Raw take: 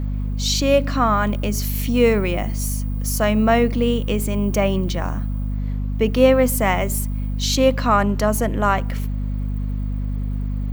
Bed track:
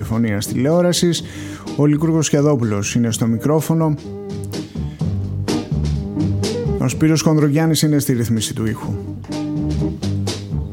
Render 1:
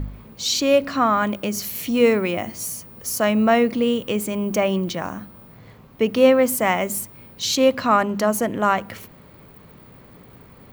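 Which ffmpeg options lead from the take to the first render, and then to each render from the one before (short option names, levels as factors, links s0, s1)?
-af "bandreject=f=50:t=h:w=4,bandreject=f=100:t=h:w=4,bandreject=f=150:t=h:w=4,bandreject=f=200:t=h:w=4,bandreject=f=250:t=h:w=4"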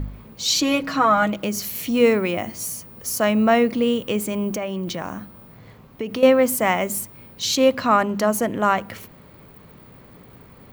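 -filter_complex "[0:a]asettb=1/sr,asplit=3[s0][s1][s2];[s0]atrim=end=0.474[s3];[s1]atrim=start=0.47:end=1.43,asetpts=PTS-STARTPTS,afade=t=in:d=0.004:c=qsin,afade=t=out:st=0.956:d=0.004:c=qsin,aecho=1:1:6.3:0.79,atrim=end_sample=42336[s4];[s2]atrim=start=1.426[s5];[s3][s4]acrossfade=d=0.004:c1=hsin:c2=qsin[s6];[s6][s5]acrossfade=d=0.004:c1=qsin:c2=hsin,asettb=1/sr,asplit=3[s7][s8][s9];[s7]atrim=end=4.494[s10];[s8]atrim=start=4.49:end=6.23,asetpts=PTS-STARTPTS,afade=t=in:d=0.004:c=qsin,afade=t=out:st=1.736:d=0.004:c=qsin,acompressor=threshold=0.0708:ratio=6:attack=3.2:release=140:knee=1:detection=peak[s11];[s9]atrim=start=6.226[s12];[s10][s11]acrossfade=d=0.004:c1=hsin:c2=qsin[s13];[s13][s12]acrossfade=d=0.004:c1=qsin:c2=hsin"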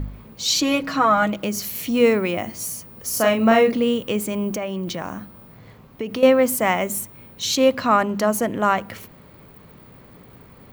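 -filter_complex "[0:a]asettb=1/sr,asplit=3[s0][s1][s2];[s0]atrim=end=3.094[s3];[s1]atrim=start=3.09:end=3.77,asetpts=PTS-STARTPTS,afade=t=in:d=0.004:c=qsin,afade=t=out:st=0.676:d=0.004:c=qsin,asplit=2[s4][s5];[s5]adelay=40,volume=0.75[s6];[s4][s6]amix=inputs=2:normalize=0,atrim=end_sample=29988[s7];[s2]atrim=start=3.766[s8];[s3][s7]acrossfade=d=0.004:c1=hsin:c2=qsin[s9];[s9][s8]acrossfade=d=0.004:c1=qsin:c2=hsin,asettb=1/sr,asplit=3[s10][s11][s12];[s10]atrim=end=6.834[s13];[s11]atrim=start=6.83:end=7.51,asetpts=PTS-STARTPTS,afade=t=in:d=0.004:c=qsin,afade=t=out:st=0.676:d=0.004:c=qsin,bandreject=f=4800:w=8[s14];[s12]atrim=start=7.506[s15];[s13][s14]acrossfade=d=0.004:c1=hsin:c2=qsin[s16];[s16][s15]acrossfade=d=0.004:c1=qsin:c2=hsin"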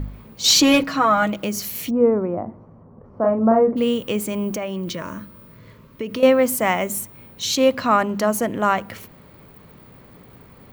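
-filter_complex "[0:a]asettb=1/sr,asplit=3[s0][s1][s2];[s0]atrim=end=0.444[s3];[s1]atrim=start=0.44:end=0.84,asetpts=PTS-STARTPTS,afade=t=in:d=0.004:c=qsin,afade=t=out:st=0.396:d=0.004:c=qsin,aeval=exprs='0.398*sin(PI/2*1.41*val(0)/0.398)':c=same[s4];[s2]atrim=start=0.836[s5];[s3][s4]acrossfade=d=0.004:c1=hsin:c2=qsin[s6];[s6][s5]acrossfade=d=0.004:c1=qsin:c2=hsin,asplit=3[s7][s8][s9];[s7]afade=t=out:st=1.89:d=0.02[s10];[s8]lowpass=f=1100:w=0.5412,lowpass=f=1100:w=1.3066,afade=t=in:st=1.89:d=0.02,afade=t=out:st=3.76:d=0.02[s11];[s9]afade=t=in:st=3.76:d=0.02[s12];[s10][s11][s12]amix=inputs=3:normalize=0,asettb=1/sr,asplit=3[s13][s14][s15];[s13]atrim=end=4.864[s16];[s14]atrim=start=4.86:end=6.2,asetpts=PTS-STARTPTS,afade=t=in:d=0.004:c=qsin,afade=t=out:st=1.336:d=0.004:c=qsin,asuperstop=centerf=770:order=8:qfactor=3.6[s17];[s15]atrim=start=6.196[s18];[s16][s17]acrossfade=d=0.004:c1=hsin:c2=qsin[s19];[s19][s18]acrossfade=d=0.004:c1=qsin:c2=hsin"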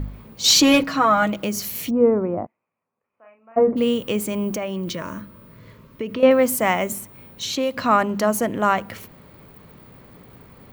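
-filter_complex "[0:a]asplit=3[s0][s1][s2];[s0]afade=t=out:st=2.45:d=0.02[s3];[s1]bandpass=f=2500:t=q:w=9.9,afade=t=in:st=2.45:d=0.02,afade=t=out:st=3.56:d=0.02[s4];[s2]afade=t=in:st=3.56:d=0.02[s5];[s3][s4][s5]amix=inputs=3:normalize=0,asettb=1/sr,asplit=3[s6][s7][s8];[s6]atrim=end=5.214[s9];[s7]atrim=start=5.21:end=6.31,asetpts=PTS-STARTPTS,afade=t=in:d=0.004:c=qsin,afade=t=out:st=1.096:d=0.004:c=qsin,acrossover=split=3500[s10][s11];[s11]acompressor=threshold=0.00282:ratio=4:attack=1:release=60[s12];[s10][s12]amix=inputs=2:normalize=0[s13];[s8]atrim=start=6.306[s14];[s9][s13]acrossfade=d=0.004:c1=hsin:c2=qsin[s15];[s15][s14]acrossfade=d=0.004:c1=qsin:c2=hsin,asettb=1/sr,asplit=3[s16][s17][s18];[s16]atrim=end=6.924[s19];[s17]atrim=start=6.92:end=7.77,asetpts=PTS-STARTPTS,afade=t=in:d=0.004:c=qsin,afade=t=out:st=0.846:d=0.004:c=qsin,acrossover=split=170|3300[s20][s21][s22];[s20]acompressor=threshold=0.00398:ratio=4[s23];[s21]acompressor=threshold=0.0891:ratio=4[s24];[s22]acompressor=threshold=0.0282:ratio=4[s25];[s23][s24][s25]amix=inputs=3:normalize=0[s26];[s18]atrim=start=7.766[s27];[s19][s26]acrossfade=d=0.004:c1=hsin:c2=qsin[s28];[s28][s27]acrossfade=d=0.004:c1=qsin:c2=hsin"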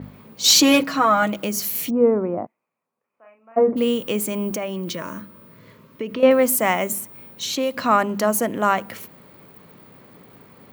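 -af "highpass=150,adynamicequalizer=threshold=0.00794:dfrequency=7200:dqfactor=0.7:tfrequency=7200:tqfactor=0.7:attack=5:release=100:ratio=0.375:range=2.5:mode=boostabove:tftype=highshelf"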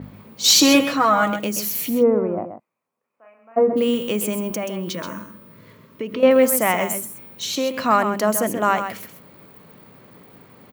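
-af "aecho=1:1:130:0.355"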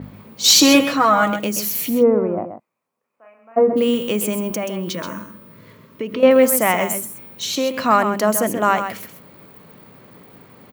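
-af "volume=1.26"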